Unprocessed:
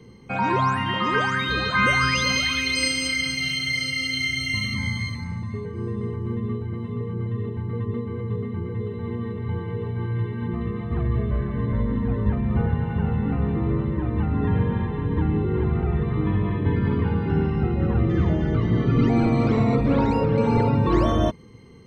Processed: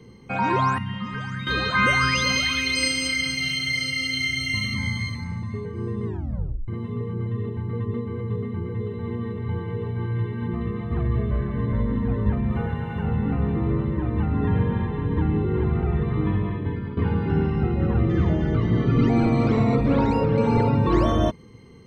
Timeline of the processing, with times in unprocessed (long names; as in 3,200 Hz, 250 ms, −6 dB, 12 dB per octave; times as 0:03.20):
0:00.78–0:01.47: drawn EQ curve 220 Hz 0 dB, 310 Hz −20 dB, 1,800 Hz −11 dB
0:06.05: tape stop 0.63 s
0:12.52–0:13.05: spectral tilt +1.5 dB per octave
0:16.27–0:16.97: fade out, to −12.5 dB